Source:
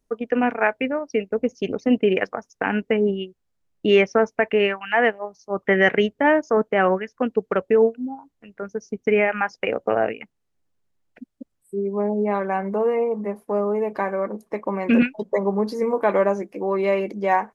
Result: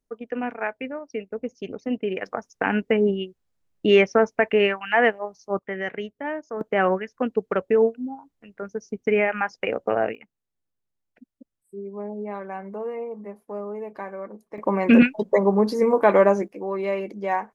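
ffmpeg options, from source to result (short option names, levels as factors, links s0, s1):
-af "asetnsamples=n=441:p=0,asendcmd='2.26 volume volume 0dB;5.59 volume volume -12.5dB;6.61 volume volume -2dB;10.15 volume volume -10dB;14.58 volume volume 3dB;16.48 volume volume -5dB',volume=0.398"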